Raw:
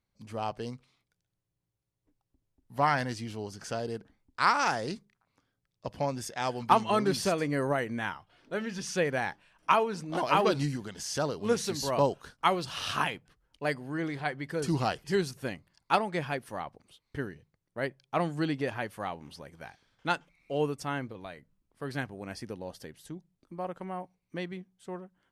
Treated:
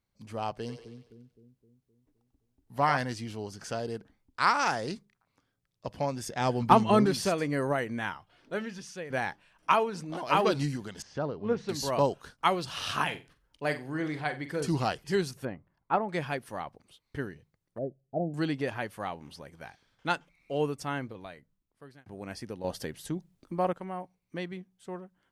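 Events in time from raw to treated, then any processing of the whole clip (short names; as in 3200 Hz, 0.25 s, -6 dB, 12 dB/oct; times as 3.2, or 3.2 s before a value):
0.53–2.97 split-band echo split 400 Hz, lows 0.259 s, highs 94 ms, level -8 dB
6.27–7.06 low shelf 460 Hz +10 dB
8.58–9.1 fade out quadratic, to -12.5 dB
9.89–10.3 compressor, threshold -32 dBFS
11.02–11.69 tape spacing loss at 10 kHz 36 dB
13.04–14.66 flutter echo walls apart 7.8 m, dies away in 0.27 s
15.45–16.09 LPF 1300 Hz
17.78–18.34 elliptic low-pass 690 Hz
21.14–22.06 fade out linear
22.64–23.73 gain +8 dB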